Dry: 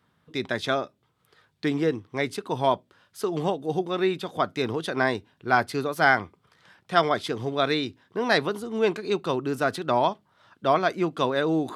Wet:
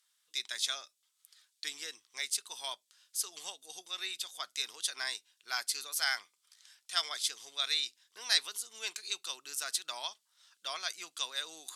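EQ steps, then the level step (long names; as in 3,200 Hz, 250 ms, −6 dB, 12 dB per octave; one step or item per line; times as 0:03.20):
resonant band-pass 7,300 Hz, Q 1.2
spectral tilt +4 dB per octave
0.0 dB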